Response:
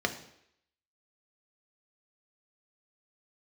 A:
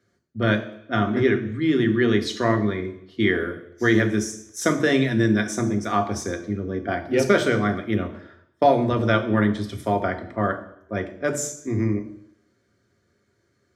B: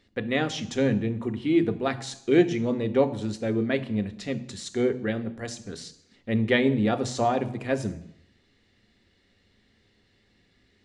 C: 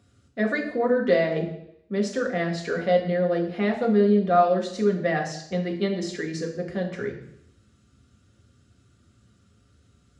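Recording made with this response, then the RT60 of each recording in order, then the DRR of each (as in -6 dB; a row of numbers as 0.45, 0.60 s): A; 0.75, 0.75, 0.75 s; 5.0, 9.0, -0.5 dB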